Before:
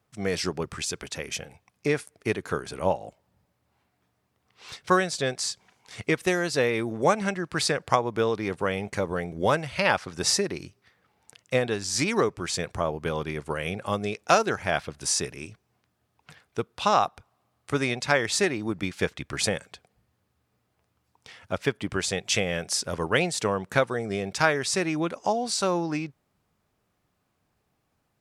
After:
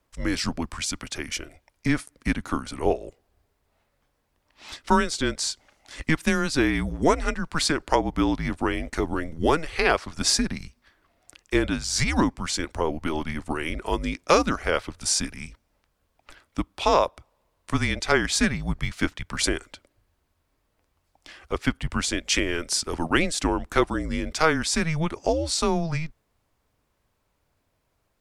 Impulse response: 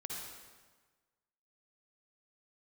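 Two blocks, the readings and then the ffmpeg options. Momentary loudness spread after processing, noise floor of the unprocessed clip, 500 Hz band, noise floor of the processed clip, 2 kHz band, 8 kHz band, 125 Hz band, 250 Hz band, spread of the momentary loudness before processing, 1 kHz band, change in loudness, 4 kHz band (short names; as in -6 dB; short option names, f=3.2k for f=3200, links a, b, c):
9 LU, -75 dBFS, -0.5 dB, -73 dBFS, +1.0 dB, +1.5 dB, +2.5 dB, +4.5 dB, 9 LU, +0.5 dB, +1.5 dB, +2.0 dB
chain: -af "afreqshift=-160,apsyclip=9.5dB,volume=-7.5dB"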